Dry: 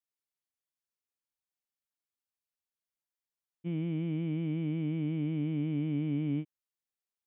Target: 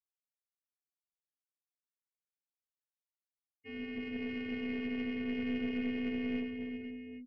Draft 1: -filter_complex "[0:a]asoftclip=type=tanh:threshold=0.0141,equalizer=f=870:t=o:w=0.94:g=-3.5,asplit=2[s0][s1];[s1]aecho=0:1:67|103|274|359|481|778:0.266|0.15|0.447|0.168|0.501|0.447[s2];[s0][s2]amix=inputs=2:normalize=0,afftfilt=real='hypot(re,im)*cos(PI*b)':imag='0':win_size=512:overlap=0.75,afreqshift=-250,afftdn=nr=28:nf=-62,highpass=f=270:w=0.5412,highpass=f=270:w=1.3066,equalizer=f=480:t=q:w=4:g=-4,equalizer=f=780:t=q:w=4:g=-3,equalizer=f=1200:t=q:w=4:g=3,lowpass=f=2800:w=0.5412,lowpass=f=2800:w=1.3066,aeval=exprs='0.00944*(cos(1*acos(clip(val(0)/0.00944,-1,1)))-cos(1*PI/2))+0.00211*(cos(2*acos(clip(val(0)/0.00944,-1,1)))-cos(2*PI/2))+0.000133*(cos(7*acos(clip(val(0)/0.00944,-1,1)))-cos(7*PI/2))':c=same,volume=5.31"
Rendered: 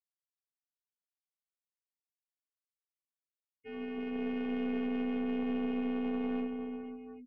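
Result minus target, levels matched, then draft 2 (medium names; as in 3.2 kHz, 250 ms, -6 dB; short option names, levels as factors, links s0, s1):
saturation: distortion +13 dB
-filter_complex "[0:a]asoftclip=type=tanh:threshold=0.0531,equalizer=f=870:t=o:w=0.94:g=-3.5,asplit=2[s0][s1];[s1]aecho=0:1:67|103|274|359|481|778:0.266|0.15|0.447|0.168|0.501|0.447[s2];[s0][s2]amix=inputs=2:normalize=0,afftfilt=real='hypot(re,im)*cos(PI*b)':imag='0':win_size=512:overlap=0.75,afreqshift=-250,afftdn=nr=28:nf=-62,highpass=f=270:w=0.5412,highpass=f=270:w=1.3066,equalizer=f=480:t=q:w=4:g=-4,equalizer=f=780:t=q:w=4:g=-3,equalizer=f=1200:t=q:w=4:g=3,lowpass=f=2800:w=0.5412,lowpass=f=2800:w=1.3066,aeval=exprs='0.00944*(cos(1*acos(clip(val(0)/0.00944,-1,1)))-cos(1*PI/2))+0.00211*(cos(2*acos(clip(val(0)/0.00944,-1,1)))-cos(2*PI/2))+0.000133*(cos(7*acos(clip(val(0)/0.00944,-1,1)))-cos(7*PI/2))':c=same,volume=5.31"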